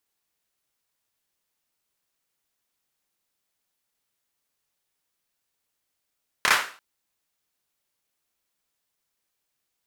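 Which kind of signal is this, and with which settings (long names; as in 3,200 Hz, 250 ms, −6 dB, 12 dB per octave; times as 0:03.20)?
synth clap length 0.34 s, bursts 3, apart 28 ms, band 1,400 Hz, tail 0.40 s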